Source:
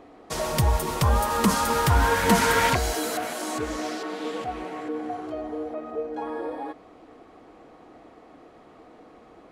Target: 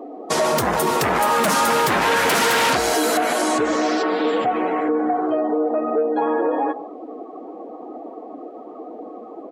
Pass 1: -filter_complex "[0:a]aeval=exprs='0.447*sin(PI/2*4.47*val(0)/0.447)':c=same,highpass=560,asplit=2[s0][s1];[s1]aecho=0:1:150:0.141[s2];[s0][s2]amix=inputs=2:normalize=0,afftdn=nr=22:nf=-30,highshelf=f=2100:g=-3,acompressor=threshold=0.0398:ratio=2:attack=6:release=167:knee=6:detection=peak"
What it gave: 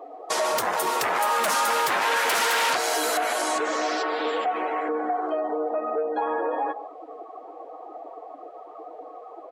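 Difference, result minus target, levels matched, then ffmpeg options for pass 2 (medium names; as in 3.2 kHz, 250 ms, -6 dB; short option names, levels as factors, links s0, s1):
250 Hz band -7.5 dB; compression: peak gain reduction +4 dB
-filter_complex "[0:a]aeval=exprs='0.447*sin(PI/2*4.47*val(0)/0.447)':c=same,highpass=220,asplit=2[s0][s1];[s1]aecho=0:1:150:0.141[s2];[s0][s2]amix=inputs=2:normalize=0,afftdn=nr=22:nf=-30,highshelf=f=2100:g=-3,acompressor=threshold=0.106:ratio=2:attack=6:release=167:knee=6:detection=peak"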